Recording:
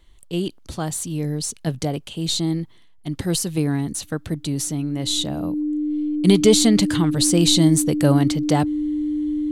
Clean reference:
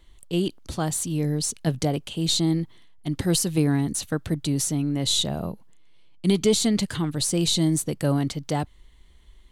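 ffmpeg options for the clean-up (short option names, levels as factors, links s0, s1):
-af "bandreject=f=300:w=30,asetnsamples=n=441:p=0,asendcmd='5.9 volume volume -6dB',volume=1"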